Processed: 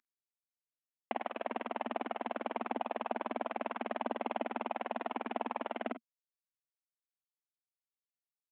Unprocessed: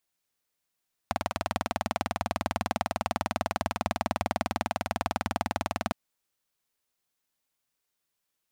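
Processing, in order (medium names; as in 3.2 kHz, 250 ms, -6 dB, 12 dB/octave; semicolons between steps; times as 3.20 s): CVSD coder 16 kbps; elliptic high-pass 230 Hz, stop band 40 dB; early reflections 37 ms -16 dB, 48 ms -11.5 dB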